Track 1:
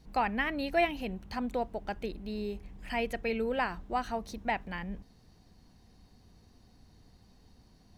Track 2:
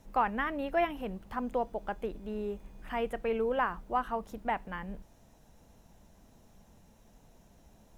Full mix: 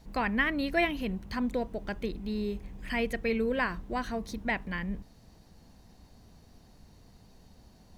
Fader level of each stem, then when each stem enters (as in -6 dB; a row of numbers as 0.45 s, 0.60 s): +2.0 dB, -2.5 dB; 0.00 s, 0.00 s